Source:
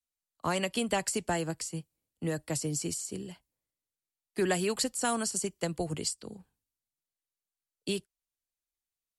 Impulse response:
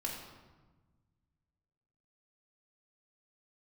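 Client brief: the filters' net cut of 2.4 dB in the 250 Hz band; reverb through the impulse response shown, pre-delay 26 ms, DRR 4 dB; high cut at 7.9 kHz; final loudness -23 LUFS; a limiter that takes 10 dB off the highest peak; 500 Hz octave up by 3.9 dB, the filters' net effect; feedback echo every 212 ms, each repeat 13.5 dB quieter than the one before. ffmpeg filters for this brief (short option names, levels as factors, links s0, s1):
-filter_complex "[0:a]lowpass=7900,equalizer=f=250:t=o:g=-6.5,equalizer=f=500:t=o:g=7,alimiter=limit=0.0631:level=0:latency=1,aecho=1:1:212|424:0.211|0.0444,asplit=2[s0][s1];[1:a]atrim=start_sample=2205,adelay=26[s2];[s1][s2]afir=irnorm=-1:irlink=0,volume=0.531[s3];[s0][s3]amix=inputs=2:normalize=0,volume=3.55"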